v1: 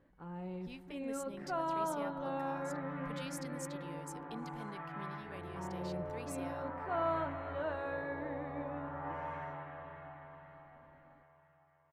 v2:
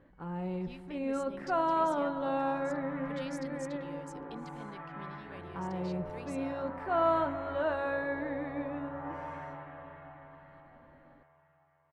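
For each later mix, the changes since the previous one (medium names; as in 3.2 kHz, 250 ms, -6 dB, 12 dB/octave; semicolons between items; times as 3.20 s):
speech: add low-pass 6.6 kHz 12 dB/octave; first sound +7.0 dB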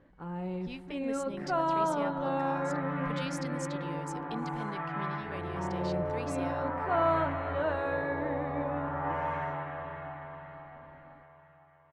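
speech +7.0 dB; second sound +9.0 dB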